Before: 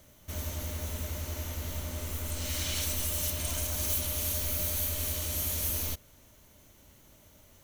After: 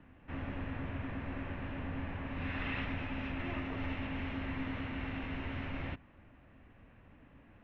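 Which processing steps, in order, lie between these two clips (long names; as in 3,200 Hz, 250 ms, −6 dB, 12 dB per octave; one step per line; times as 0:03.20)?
low-shelf EQ 420 Hz +10 dB
single-sideband voice off tune −340 Hz 250–2,800 Hz
level +2 dB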